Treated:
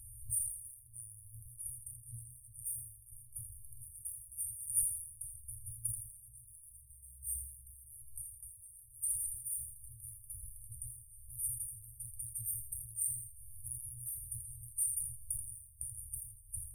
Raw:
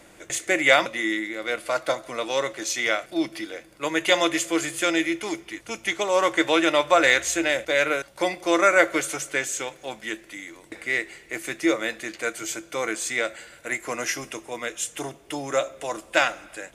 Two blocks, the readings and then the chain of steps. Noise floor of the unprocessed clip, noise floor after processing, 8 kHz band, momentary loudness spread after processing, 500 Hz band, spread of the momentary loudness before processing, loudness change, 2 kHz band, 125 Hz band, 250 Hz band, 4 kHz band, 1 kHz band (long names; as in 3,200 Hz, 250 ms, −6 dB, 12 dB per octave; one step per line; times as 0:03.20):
−51 dBFS, −58 dBFS, −5.5 dB, 16 LU, below −40 dB, 15 LU, −15.5 dB, below −40 dB, −5.0 dB, below −40 dB, below −40 dB, below −40 dB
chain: mains-hum notches 50/100/150/200/250 Hz
in parallel at −10.5 dB: slack as between gear wheels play −26 dBFS
on the sum: downward compressor 6 to 1, threshold −32 dBFS, peak gain reduction 21 dB
brick-wall band-stop 120–8,700 Hz
on a send: delay with a high-pass on its return 82 ms, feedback 44%, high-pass 4,800 Hz, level −10.5 dB
on the sum: level that may fall only so fast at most 74 dB per second
level +10 dB